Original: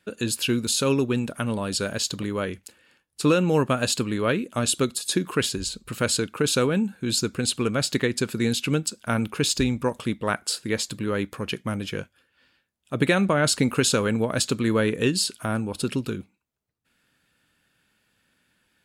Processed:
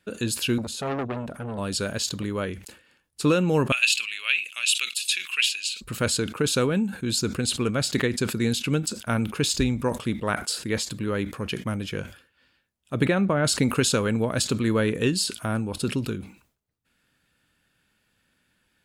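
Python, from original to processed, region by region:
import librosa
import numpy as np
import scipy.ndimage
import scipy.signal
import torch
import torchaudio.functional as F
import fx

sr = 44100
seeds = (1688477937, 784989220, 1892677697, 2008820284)

y = fx.chain(x, sr, fx.high_shelf(hz=2400.0, db=-11.0),
    fx.transformer_sat(knee_hz=1300.0), at=(0.58, 1.58))
y = fx.chain(y, sr, fx.highpass_res(hz=2600.0, q=7.5),
    fx.quant_float(bits=8), at=(3.72, 5.81))
y = fx.chain(y, sr, fx.median_filter(points=3),
    fx.high_shelf(hz=2900.0, db=-11.5), at=(13.05, 13.45))
y = fx.low_shelf(y, sr, hz=78.0, db=7.0)
y = fx.sustainer(y, sr, db_per_s=130.0)
y = y * librosa.db_to_amplitude(-1.5)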